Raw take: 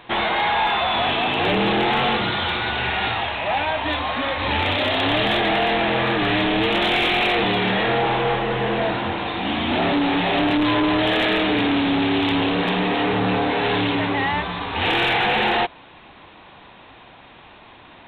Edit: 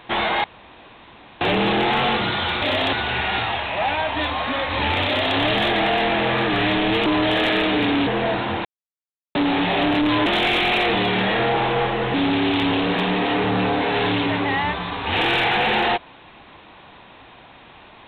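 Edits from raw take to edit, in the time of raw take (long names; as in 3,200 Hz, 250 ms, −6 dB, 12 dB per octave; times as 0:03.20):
0:00.44–0:01.41: fill with room tone
0:04.75–0:05.06: duplicate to 0:02.62
0:06.75–0:08.63: swap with 0:10.82–0:11.83
0:09.21–0:09.91: silence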